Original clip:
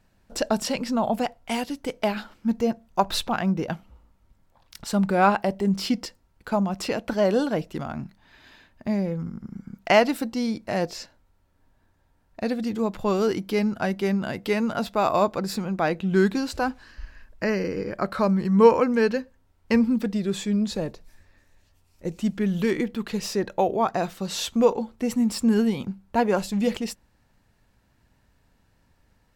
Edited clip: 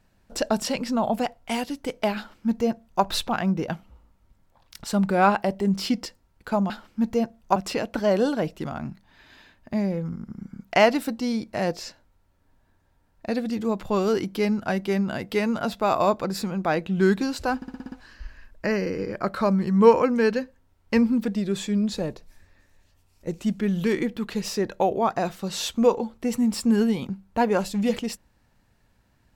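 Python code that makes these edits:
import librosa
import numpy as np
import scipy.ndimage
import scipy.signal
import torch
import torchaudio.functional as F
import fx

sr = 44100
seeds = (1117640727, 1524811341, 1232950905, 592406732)

y = fx.edit(x, sr, fx.duplicate(start_s=2.17, length_s=0.86, to_s=6.7),
    fx.stutter(start_s=16.7, slice_s=0.06, count=7), tone=tone)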